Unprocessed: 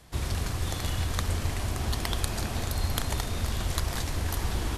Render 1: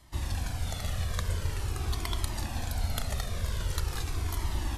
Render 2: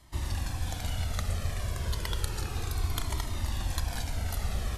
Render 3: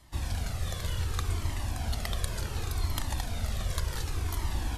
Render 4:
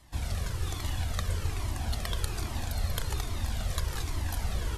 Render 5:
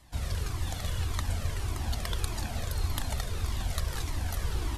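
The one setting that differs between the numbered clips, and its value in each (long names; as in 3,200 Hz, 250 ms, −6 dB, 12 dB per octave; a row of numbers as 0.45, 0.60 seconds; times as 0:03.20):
flanger whose copies keep moving one way, speed: 0.45, 0.31, 0.68, 1.2, 1.7 Hertz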